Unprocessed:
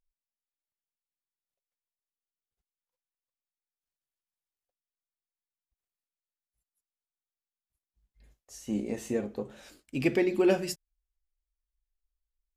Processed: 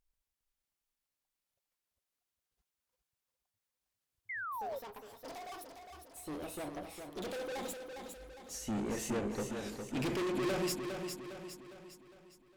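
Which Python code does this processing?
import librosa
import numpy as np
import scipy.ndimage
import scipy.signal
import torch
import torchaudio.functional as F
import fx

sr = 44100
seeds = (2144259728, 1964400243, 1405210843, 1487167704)

y = fx.tube_stage(x, sr, drive_db=38.0, bias=0.35)
y = fx.echo_pitch(y, sr, ms=136, semitones=6, count=2, db_per_echo=-6.0)
y = fx.echo_feedback(y, sr, ms=407, feedback_pct=48, wet_db=-6.5)
y = fx.spec_paint(y, sr, seeds[0], shape='fall', start_s=4.29, length_s=0.5, low_hz=510.0, high_hz=2200.0, level_db=-45.0)
y = y * 10.0 ** (5.0 / 20.0)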